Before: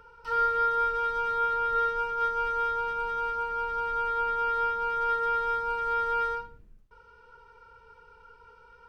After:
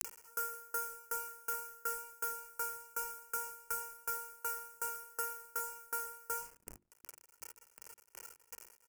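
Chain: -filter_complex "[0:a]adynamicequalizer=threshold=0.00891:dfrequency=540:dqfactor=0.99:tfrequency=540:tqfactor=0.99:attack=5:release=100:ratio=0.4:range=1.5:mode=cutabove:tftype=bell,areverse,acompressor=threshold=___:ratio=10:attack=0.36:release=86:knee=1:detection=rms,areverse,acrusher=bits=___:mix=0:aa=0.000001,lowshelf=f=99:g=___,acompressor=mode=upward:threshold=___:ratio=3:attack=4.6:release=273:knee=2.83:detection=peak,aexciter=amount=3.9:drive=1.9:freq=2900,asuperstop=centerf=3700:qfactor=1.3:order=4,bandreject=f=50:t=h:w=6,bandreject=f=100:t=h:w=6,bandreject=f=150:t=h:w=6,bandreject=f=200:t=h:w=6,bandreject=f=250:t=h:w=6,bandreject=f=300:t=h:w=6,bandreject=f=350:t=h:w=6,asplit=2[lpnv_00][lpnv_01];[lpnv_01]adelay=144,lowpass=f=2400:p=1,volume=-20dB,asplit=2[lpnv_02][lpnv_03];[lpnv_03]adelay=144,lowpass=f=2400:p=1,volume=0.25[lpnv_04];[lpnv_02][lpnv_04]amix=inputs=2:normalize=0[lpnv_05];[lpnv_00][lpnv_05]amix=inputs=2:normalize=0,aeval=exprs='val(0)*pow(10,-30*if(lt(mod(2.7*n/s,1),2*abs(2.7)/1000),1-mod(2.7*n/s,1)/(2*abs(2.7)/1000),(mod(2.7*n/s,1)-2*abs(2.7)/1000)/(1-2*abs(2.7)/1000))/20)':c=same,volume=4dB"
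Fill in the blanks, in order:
-36dB, 7, -9.5, -46dB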